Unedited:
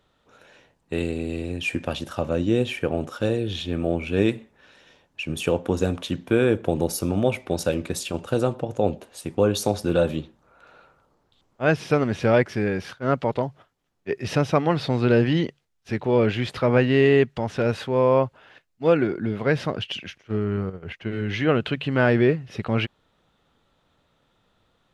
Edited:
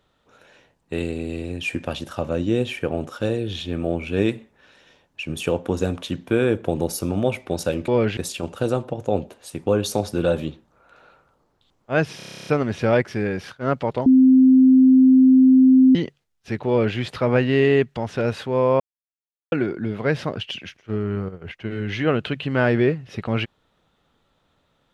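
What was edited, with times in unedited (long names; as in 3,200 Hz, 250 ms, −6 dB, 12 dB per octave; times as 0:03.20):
0:11.88: stutter 0.03 s, 11 plays
0:13.47–0:15.36: beep over 260 Hz −9 dBFS
0:16.09–0:16.38: duplicate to 0:07.88
0:18.21–0:18.93: silence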